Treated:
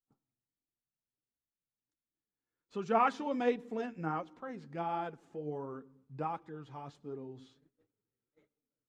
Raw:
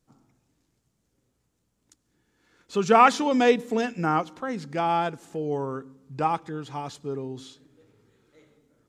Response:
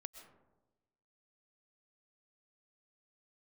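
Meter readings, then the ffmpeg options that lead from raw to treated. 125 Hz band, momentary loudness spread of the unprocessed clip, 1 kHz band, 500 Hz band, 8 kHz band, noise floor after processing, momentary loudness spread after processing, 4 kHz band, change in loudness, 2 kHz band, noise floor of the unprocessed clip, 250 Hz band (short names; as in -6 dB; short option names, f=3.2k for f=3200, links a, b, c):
-11.0 dB, 17 LU, -12.0 dB, -11.5 dB, under -20 dB, under -85 dBFS, 17 LU, -17.5 dB, -12.0 dB, -14.0 dB, -75 dBFS, -12.0 dB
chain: -af "lowpass=f=1.8k:p=1,agate=range=-18dB:threshold=-56dB:ratio=16:detection=peak,flanger=delay=2.4:depth=6.6:regen=50:speed=1.4:shape=triangular,volume=-7dB"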